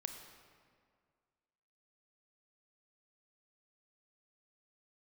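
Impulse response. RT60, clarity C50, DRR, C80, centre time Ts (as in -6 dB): 2.0 s, 6.5 dB, 5.5 dB, 7.5 dB, 36 ms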